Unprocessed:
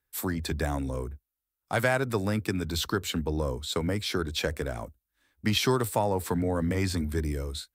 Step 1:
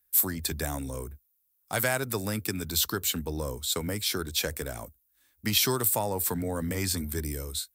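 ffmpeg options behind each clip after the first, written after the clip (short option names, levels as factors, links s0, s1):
-af "aemphasis=mode=production:type=75fm,volume=0.708"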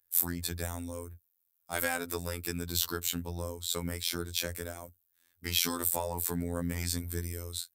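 -af "afftfilt=real='hypot(re,im)*cos(PI*b)':imag='0':win_size=2048:overlap=0.75,volume=0.891"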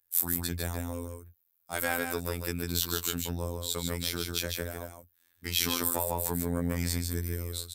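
-af "aecho=1:1:151:0.596"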